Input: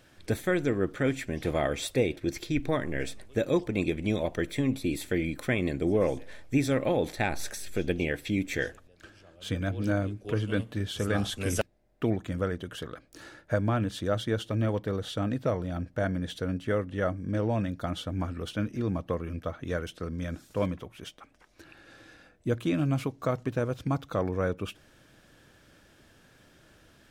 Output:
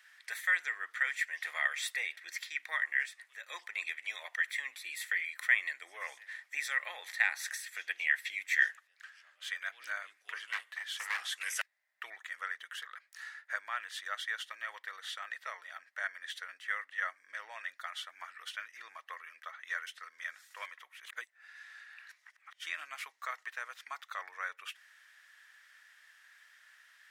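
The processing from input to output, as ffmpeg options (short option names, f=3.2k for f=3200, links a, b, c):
-filter_complex "[0:a]asplit=3[a][b][c];[a]afade=t=out:st=3.05:d=0.02[d];[b]acompressor=threshold=-46dB:ratio=1.5:attack=3.2:release=140:knee=1:detection=peak,afade=t=in:st=3.05:d=0.02,afade=t=out:st=3.48:d=0.02[e];[c]afade=t=in:st=3.48:d=0.02[f];[d][e][f]amix=inputs=3:normalize=0,asettb=1/sr,asplit=3[g][h][i];[g]atrim=end=10.454[j];[h]atrim=start=10.45:end=11.2,asetpts=PTS-STARTPTS,afade=t=in:d=0.004:c=qsin,afade=t=out:st=0.746:d=0.004:c=qsin,aeval=exprs='0.0631*(abs(mod(val(0)/0.0631+3,4)-2)-1)':c=same[k];[i]atrim=start=11.196[l];[j][k]acrossfade=d=0.004:c1=hsin:c2=qsin[m];[m][l]acrossfade=d=0.004:c1=qsin:c2=hsin,asplit=3[n][o][p];[n]atrim=end=21.052[q];[o]atrim=start=21.048:end=22.662,asetpts=PTS-STARTPTS,areverse[r];[p]atrim=start=22.658[s];[q][r]acrossfade=d=0.004:c1=hsin:c2=hsin[t];[t][s]acrossfade=d=0.004:c1=hsin:c2=hsin,highpass=f=1.1k:w=0.5412,highpass=f=1.1k:w=1.3066,equalizer=f=1.9k:t=o:w=0.31:g=14.5,volume=-3dB"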